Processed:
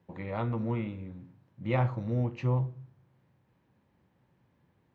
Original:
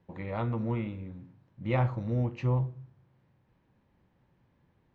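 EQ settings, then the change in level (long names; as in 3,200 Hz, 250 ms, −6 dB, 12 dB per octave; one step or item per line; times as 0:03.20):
high-pass filter 73 Hz
0.0 dB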